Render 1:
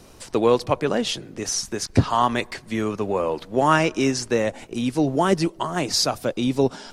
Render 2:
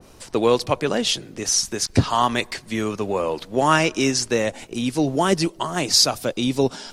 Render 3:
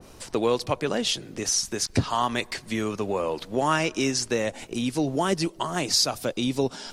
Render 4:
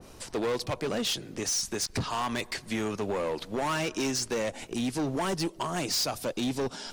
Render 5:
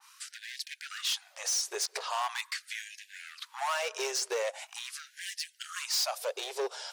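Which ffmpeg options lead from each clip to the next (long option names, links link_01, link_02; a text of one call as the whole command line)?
ffmpeg -i in.wav -af "adynamicequalizer=threshold=0.0126:dfrequency=2300:dqfactor=0.7:tfrequency=2300:tqfactor=0.7:attack=5:release=100:ratio=0.375:range=3:mode=boostabove:tftype=highshelf" out.wav
ffmpeg -i in.wav -af "acompressor=threshold=-29dB:ratio=1.5" out.wav
ffmpeg -i in.wav -af "asoftclip=type=hard:threshold=-24dB,volume=-1.5dB" out.wav
ffmpeg -i in.wav -af "afftfilt=real='re*gte(b*sr/1024,360*pow(1600/360,0.5+0.5*sin(2*PI*0.42*pts/sr)))':imag='im*gte(b*sr/1024,360*pow(1600/360,0.5+0.5*sin(2*PI*0.42*pts/sr)))':win_size=1024:overlap=0.75,volume=-1dB" out.wav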